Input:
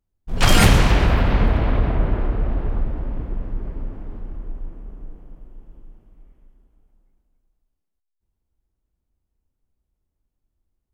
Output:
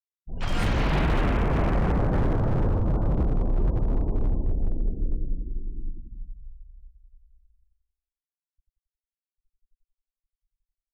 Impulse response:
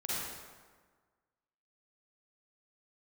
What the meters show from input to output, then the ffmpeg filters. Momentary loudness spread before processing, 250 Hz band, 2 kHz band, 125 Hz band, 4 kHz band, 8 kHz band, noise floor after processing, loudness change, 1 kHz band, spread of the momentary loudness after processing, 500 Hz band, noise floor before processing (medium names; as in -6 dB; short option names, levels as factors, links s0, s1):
22 LU, -3.0 dB, -9.0 dB, -4.0 dB, under -10 dB, under -20 dB, under -85 dBFS, -6.5 dB, -5.5 dB, 16 LU, -3.0 dB, -78 dBFS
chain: -filter_complex "[0:a]areverse,acompressor=threshold=0.0708:ratio=12,areverse,afftfilt=real='re*gte(hypot(re,im),0.00708)':imag='im*gte(hypot(re,im),0.00708)':win_size=1024:overlap=0.75,adynamicequalizer=threshold=0.00398:dfrequency=110:dqfactor=2.8:tfrequency=110:tqfactor=2.8:attack=5:release=100:ratio=0.375:range=3.5:mode=cutabove:tftype=bell,lowpass=f=2900:p=1,equalizer=f=69:t=o:w=1.7:g=2.5,dynaudnorm=f=490:g=3:m=2.99,asplit=2[s0][s1];[s1]adelay=90,lowpass=f=1300:p=1,volume=0.668,asplit=2[s2][s3];[s3]adelay=90,lowpass=f=1300:p=1,volume=0.46,asplit=2[s4][s5];[s5]adelay=90,lowpass=f=1300:p=1,volume=0.46,asplit=2[s6][s7];[s7]adelay=90,lowpass=f=1300:p=1,volume=0.46,asplit=2[s8][s9];[s9]adelay=90,lowpass=f=1300:p=1,volume=0.46,asplit=2[s10][s11];[s11]adelay=90,lowpass=f=1300:p=1,volume=0.46[s12];[s0][s2][s4][s6][s8][s10][s12]amix=inputs=7:normalize=0,aeval=exprs='0.178*(abs(mod(val(0)/0.178+3,4)-2)-1)':c=same,volume=0.794"